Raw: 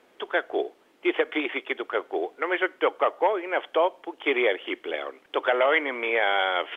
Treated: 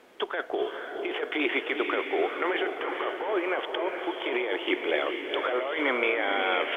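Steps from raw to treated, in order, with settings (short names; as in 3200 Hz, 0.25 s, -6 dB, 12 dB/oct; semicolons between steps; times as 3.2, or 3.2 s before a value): negative-ratio compressor -28 dBFS, ratio -1; diffused feedback echo 0.456 s, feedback 47%, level -5 dB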